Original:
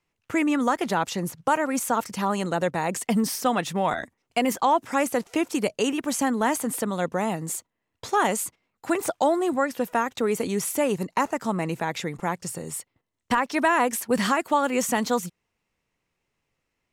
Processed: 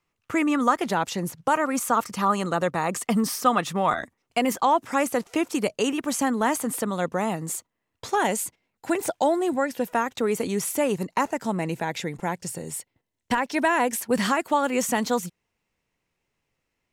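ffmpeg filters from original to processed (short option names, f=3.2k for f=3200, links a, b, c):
-af "asetnsamples=n=441:p=0,asendcmd='0.81 equalizer g -1;1.54 equalizer g 9.5;4.01 equalizer g 2.5;8.15 equalizer g -9;9.87 equalizer g -1;11.26 equalizer g -9;13.99 equalizer g -2',equalizer=f=1.2k:t=o:w=0.24:g=7.5"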